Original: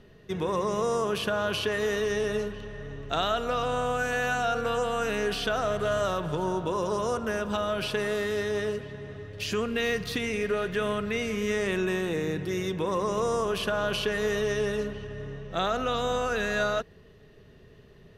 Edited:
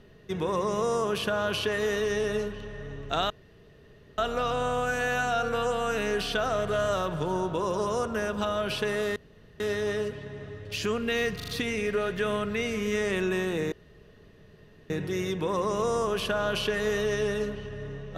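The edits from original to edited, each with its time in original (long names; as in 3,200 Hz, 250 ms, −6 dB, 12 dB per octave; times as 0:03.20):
0:03.30: splice in room tone 0.88 s
0:08.28: splice in room tone 0.44 s
0:10.04: stutter 0.04 s, 4 plays
0:12.28: splice in room tone 1.18 s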